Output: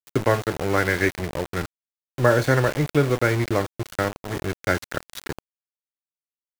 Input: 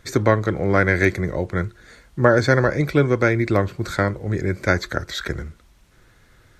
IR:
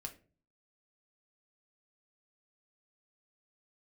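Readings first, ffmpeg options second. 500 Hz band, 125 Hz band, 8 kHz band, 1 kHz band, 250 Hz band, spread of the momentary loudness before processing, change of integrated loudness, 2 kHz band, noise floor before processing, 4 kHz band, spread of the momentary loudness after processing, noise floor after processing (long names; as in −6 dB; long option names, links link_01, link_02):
−3.0 dB, −3.5 dB, +1.5 dB, −2.0 dB, −4.5 dB, 11 LU, −3.0 dB, −3.5 dB, −55 dBFS, −1.5 dB, 15 LU, below −85 dBFS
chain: -filter_complex "[0:a]asplit=2[link_01][link_02];[1:a]atrim=start_sample=2205,afade=type=out:start_time=0.13:duration=0.01,atrim=end_sample=6174[link_03];[link_02][link_03]afir=irnorm=-1:irlink=0,volume=0.5dB[link_04];[link_01][link_04]amix=inputs=2:normalize=0,adynamicequalizer=threshold=0.0398:dfrequency=890:dqfactor=1.3:tfrequency=890:tqfactor=1.3:attack=5:release=100:ratio=0.375:range=1.5:mode=boostabove:tftype=bell,aeval=exprs='val(0)*gte(abs(val(0)),0.133)':channel_layout=same,volume=-8dB"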